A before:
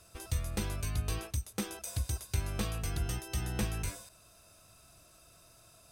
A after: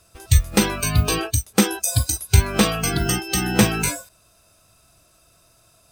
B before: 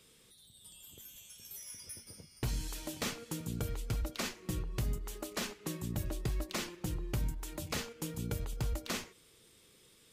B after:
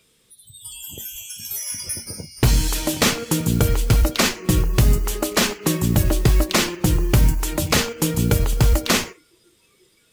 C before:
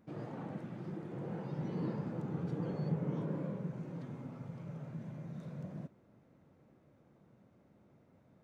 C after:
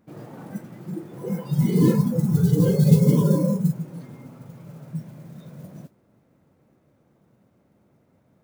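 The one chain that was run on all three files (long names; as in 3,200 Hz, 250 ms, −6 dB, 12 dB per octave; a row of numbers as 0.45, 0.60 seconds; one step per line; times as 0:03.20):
noise that follows the level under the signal 23 dB
noise reduction from a noise print of the clip's start 17 dB
loudness normalisation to −20 LKFS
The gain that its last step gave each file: +19.5, +19.0, +20.5 decibels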